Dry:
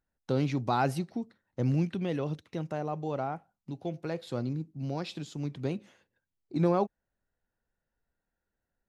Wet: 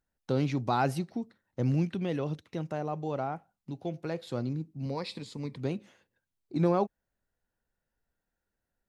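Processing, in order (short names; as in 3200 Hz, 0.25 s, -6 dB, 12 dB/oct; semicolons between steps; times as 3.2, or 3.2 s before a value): 4.85–5.57 ripple EQ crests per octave 0.94, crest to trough 10 dB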